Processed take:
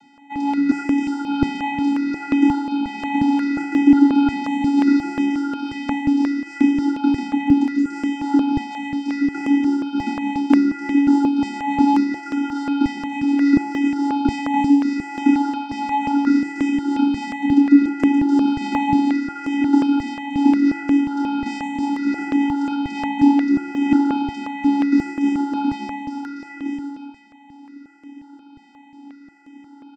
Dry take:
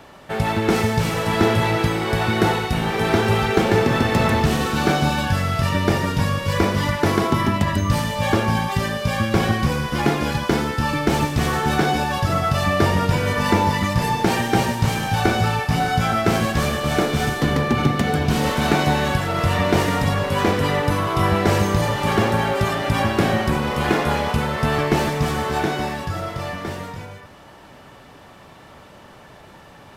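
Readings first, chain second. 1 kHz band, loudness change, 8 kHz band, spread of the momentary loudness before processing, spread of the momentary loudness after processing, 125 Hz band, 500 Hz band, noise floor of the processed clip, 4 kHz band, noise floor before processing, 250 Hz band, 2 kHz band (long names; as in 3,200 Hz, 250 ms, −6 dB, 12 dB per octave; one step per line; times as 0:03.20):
−3.5 dB, +1.0 dB, below −10 dB, 4 LU, 8 LU, −18.0 dB, −14.0 dB, −46 dBFS, −10.5 dB, −45 dBFS, +7.0 dB, −7.0 dB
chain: channel vocoder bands 16, square 282 Hz
double-tracking delay 28 ms −4 dB
step-sequenced phaser 5.6 Hz 300–4,300 Hz
level +3 dB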